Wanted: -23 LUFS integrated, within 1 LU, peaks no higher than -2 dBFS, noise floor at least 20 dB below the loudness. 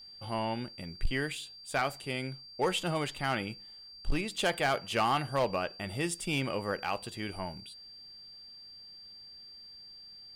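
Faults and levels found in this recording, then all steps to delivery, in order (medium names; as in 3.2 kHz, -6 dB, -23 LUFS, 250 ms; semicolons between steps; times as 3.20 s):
clipped samples 0.7%; clipping level -21.5 dBFS; steady tone 4.7 kHz; tone level -48 dBFS; loudness -33.0 LUFS; peak level -21.5 dBFS; loudness target -23.0 LUFS
-> clip repair -21.5 dBFS; band-stop 4.7 kHz, Q 30; trim +10 dB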